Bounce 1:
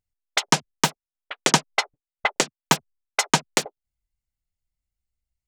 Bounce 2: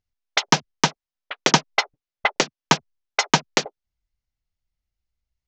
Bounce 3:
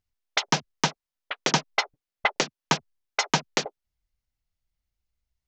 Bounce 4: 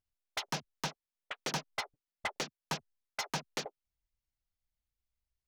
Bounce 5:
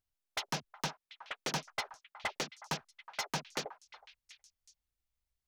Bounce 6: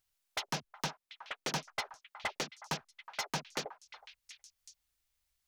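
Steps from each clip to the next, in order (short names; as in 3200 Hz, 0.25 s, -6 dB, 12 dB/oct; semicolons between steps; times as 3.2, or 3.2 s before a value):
steep low-pass 6500 Hz 48 dB/oct; gain +2 dB
limiter -9 dBFS, peak gain reduction 7.5 dB
soft clip -21 dBFS, distortion -8 dB; gain -7.5 dB
delay with a stepping band-pass 0.368 s, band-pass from 1100 Hz, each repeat 1.4 oct, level -11.5 dB
mismatched tape noise reduction encoder only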